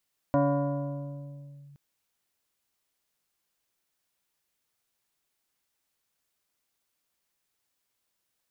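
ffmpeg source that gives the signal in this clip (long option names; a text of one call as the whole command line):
ffmpeg -f lavfi -i "aevalsrc='0.112*pow(10,-3*t/2.83)*sin(2*PI*142*t+1.7*clip(1-t/1.38,0,1)*sin(2*PI*3*142*t))':duration=1.42:sample_rate=44100" out.wav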